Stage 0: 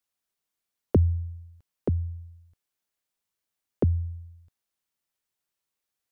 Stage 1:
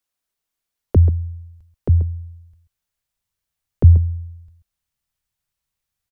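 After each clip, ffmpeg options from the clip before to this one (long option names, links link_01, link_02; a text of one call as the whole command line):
ffmpeg -i in.wav -af "asubboost=boost=8.5:cutoff=110,aecho=1:1:134:0.237,volume=2.5dB" out.wav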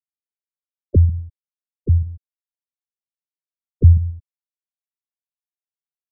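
ffmpeg -i in.wav -filter_complex "[0:a]asplit=2[link_01][link_02];[link_02]adelay=88,lowpass=frequency=880:poles=1,volume=-18dB,asplit=2[link_03][link_04];[link_04]adelay=88,lowpass=frequency=880:poles=1,volume=0.4,asplit=2[link_05][link_06];[link_06]adelay=88,lowpass=frequency=880:poles=1,volume=0.4[link_07];[link_01][link_03][link_05][link_07]amix=inputs=4:normalize=0,aeval=exprs='sgn(val(0))*max(abs(val(0))-0.0126,0)':channel_layout=same,afftfilt=real='re*gte(hypot(re,im),0.282)':imag='im*gte(hypot(re,im),0.282)':win_size=1024:overlap=0.75" out.wav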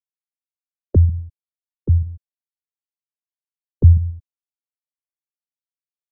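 ffmpeg -i in.wav -af "agate=range=-33dB:threshold=-33dB:ratio=3:detection=peak" out.wav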